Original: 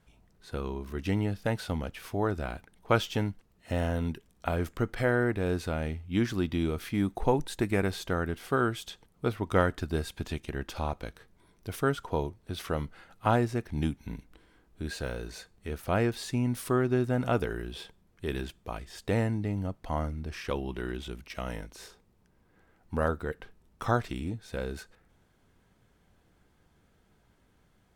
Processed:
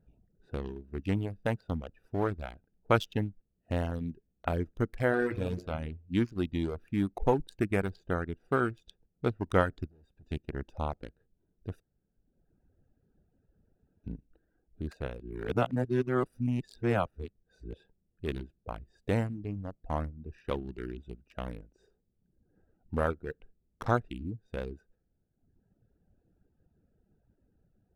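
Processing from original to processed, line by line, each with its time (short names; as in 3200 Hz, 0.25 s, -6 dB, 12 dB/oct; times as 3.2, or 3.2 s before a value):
5.07–5.57 reverb throw, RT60 0.8 s, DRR 4.5 dB
9.87–10.31 tube stage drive 46 dB, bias 0.6
11.8–14.04 room tone
15.2–17.74 reverse
whole clip: Wiener smoothing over 41 samples; reverb removal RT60 1.2 s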